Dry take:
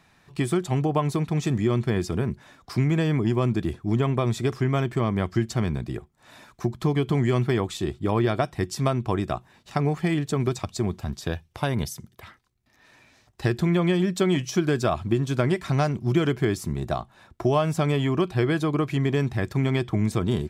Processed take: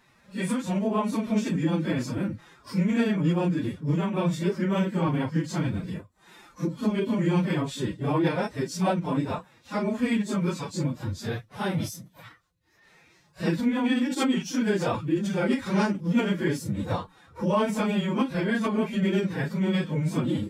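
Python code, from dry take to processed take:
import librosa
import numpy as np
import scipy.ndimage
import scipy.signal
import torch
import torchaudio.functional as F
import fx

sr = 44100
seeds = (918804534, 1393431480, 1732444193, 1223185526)

y = fx.phase_scramble(x, sr, seeds[0], window_ms=100)
y = fx.pitch_keep_formants(y, sr, semitones=6.0)
y = y * librosa.db_to_amplitude(-1.5)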